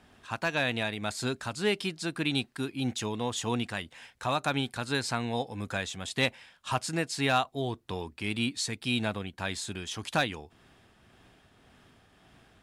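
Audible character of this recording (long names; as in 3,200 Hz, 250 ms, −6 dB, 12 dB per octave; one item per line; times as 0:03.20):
tremolo triangle 1.8 Hz, depth 35%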